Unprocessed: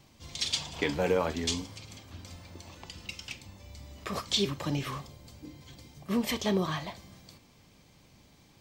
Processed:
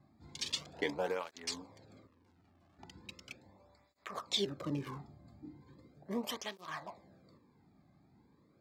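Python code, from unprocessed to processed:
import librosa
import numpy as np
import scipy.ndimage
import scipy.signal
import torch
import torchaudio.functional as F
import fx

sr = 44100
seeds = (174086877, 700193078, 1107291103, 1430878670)

y = fx.wiener(x, sr, points=15)
y = fx.tube_stage(y, sr, drive_db=60.0, bias=0.55, at=(2.07, 2.79))
y = fx.flanger_cancel(y, sr, hz=0.38, depth_ms=2.2)
y = y * librosa.db_to_amplitude(-3.0)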